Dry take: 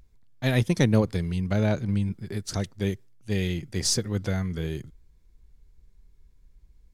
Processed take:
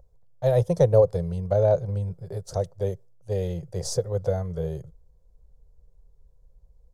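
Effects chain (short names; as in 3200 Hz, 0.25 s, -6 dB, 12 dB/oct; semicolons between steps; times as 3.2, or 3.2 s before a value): EQ curve 170 Hz 0 dB, 240 Hz -25 dB, 520 Hz +13 dB, 2200 Hz -18 dB, 6300 Hz -7 dB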